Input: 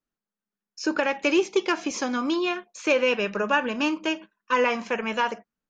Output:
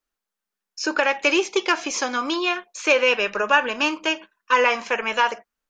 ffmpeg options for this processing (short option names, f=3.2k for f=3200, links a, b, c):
-af "equalizer=f=170:t=o:w=2:g=-15,volume=6.5dB"